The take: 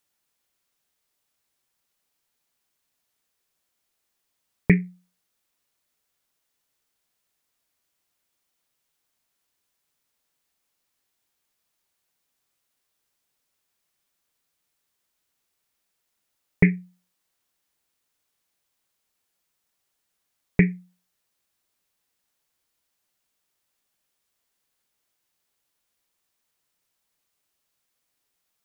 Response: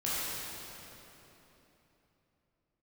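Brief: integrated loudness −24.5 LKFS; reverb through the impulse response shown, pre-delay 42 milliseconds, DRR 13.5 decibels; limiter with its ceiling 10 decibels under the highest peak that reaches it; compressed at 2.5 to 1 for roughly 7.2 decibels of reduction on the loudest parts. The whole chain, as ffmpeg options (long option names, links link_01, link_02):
-filter_complex "[0:a]acompressor=threshold=-23dB:ratio=2.5,alimiter=limit=-18dB:level=0:latency=1,asplit=2[link_01][link_02];[1:a]atrim=start_sample=2205,adelay=42[link_03];[link_02][link_03]afir=irnorm=-1:irlink=0,volume=-21.5dB[link_04];[link_01][link_04]amix=inputs=2:normalize=0,volume=14dB"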